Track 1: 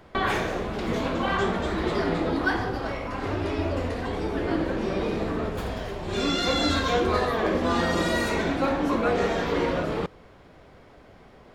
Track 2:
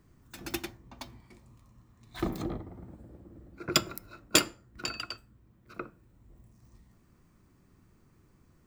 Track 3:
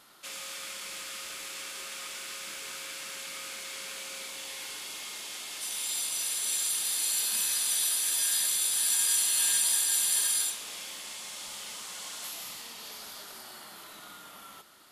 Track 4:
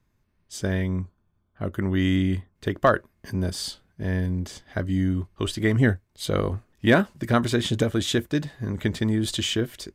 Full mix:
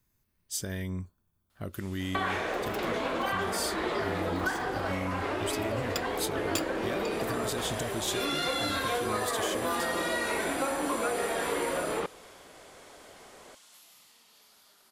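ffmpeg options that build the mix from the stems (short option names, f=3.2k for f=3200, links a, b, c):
-filter_complex "[0:a]lowpass=8.2k,bass=f=250:g=-13,treble=f=4k:g=-15,adelay=2000,volume=1.5dB[a];[1:a]highshelf=f=12k:g=6,adelay=2200,volume=-11dB[b];[2:a]adelay=1500,volume=-16.5dB[c];[3:a]alimiter=limit=-19.5dB:level=0:latency=1:release=234,volume=-6dB[d];[a][d]amix=inputs=2:normalize=0,aemphasis=mode=production:type=75fm,acompressor=threshold=-27dB:ratio=6,volume=0dB[e];[b][c][e]amix=inputs=3:normalize=0"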